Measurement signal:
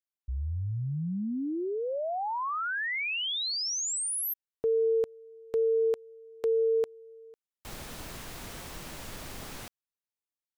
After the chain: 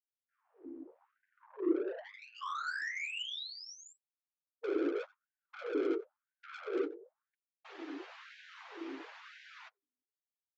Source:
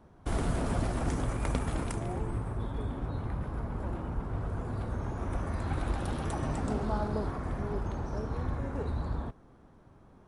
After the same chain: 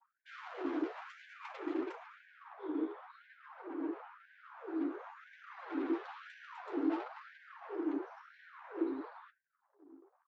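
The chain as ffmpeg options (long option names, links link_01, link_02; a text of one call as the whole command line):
ffmpeg -i in.wav -filter_complex "[0:a]afftfilt=real='hypot(re,im)*cos(2*PI*random(0))':imag='hypot(re,im)*sin(2*PI*random(1))':win_size=512:overlap=0.75,highpass=140,lowpass=3000,aemphasis=mode=reproduction:type=cd,bandreject=frequency=50:width_type=h:width=6,bandreject=frequency=100:width_type=h:width=6,bandreject=frequency=150:width_type=h:width=6,bandreject=frequency=200:width_type=h:width=6,bandreject=frequency=250:width_type=h:width=6,bandreject=frequency=300:width_type=h:width=6,bandreject=frequency=350:width_type=h:width=6,bandreject=frequency=400:width_type=h:width=6,bandreject=frequency=450:width_type=h:width=6,asplit=2[link_01][link_02];[link_02]adelay=15,volume=-12.5dB[link_03];[link_01][link_03]amix=inputs=2:normalize=0,asplit=2[link_04][link_05];[link_05]adelay=90,highpass=300,lowpass=3400,asoftclip=type=hard:threshold=-29.5dB,volume=-19dB[link_06];[link_04][link_06]amix=inputs=2:normalize=0,aresample=16000,asoftclip=type=tanh:threshold=-38.5dB,aresample=44100,anlmdn=0.00001,lowshelf=frequency=390:width_type=q:width=3:gain=12.5,flanger=delay=4.8:depth=8.8:regen=-16:speed=0.54:shape=triangular,aeval=exprs='val(0)+0.000631*(sin(2*PI*50*n/s)+sin(2*PI*2*50*n/s)/2+sin(2*PI*3*50*n/s)/3+sin(2*PI*4*50*n/s)/4+sin(2*PI*5*50*n/s)/5)':channel_layout=same,afftfilt=real='re*gte(b*sr/1024,260*pow(1500/260,0.5+0.5*sin(2*PI*0.98*pts/sr)))':imag='im*gte(b*sr/1024,260*pow(1500/260,0.5+0.5*sin(2*PI*0.98*pts/sr)))':win_size=1024:overlap=0.75,volume=8dB" out.wav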